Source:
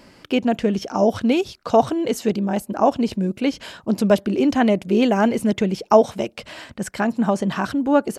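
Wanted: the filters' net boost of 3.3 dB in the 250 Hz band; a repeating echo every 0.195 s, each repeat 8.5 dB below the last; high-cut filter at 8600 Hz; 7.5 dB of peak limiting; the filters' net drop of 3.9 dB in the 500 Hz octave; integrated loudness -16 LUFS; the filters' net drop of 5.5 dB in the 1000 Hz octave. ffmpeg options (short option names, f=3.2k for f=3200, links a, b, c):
-af "lowpass=8.6k,equalizer=f=250:t=o:g=5,equalizer=f=500:t=o:g=-4.5,equalizer=f=1k:t=o:g=-6,alimiter=limit=-13dB:level=0:latency=1,aecho=1:1:195|390|585|780:0.376|0.143|0.0543|0.0206,volume=6dB"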